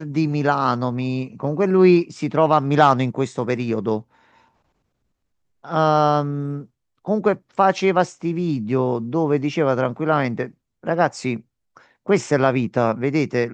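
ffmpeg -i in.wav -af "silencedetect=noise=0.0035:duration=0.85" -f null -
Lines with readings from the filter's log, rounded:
silence_start: 4.47
silence_end: 5.63 | silence_duration: 1.16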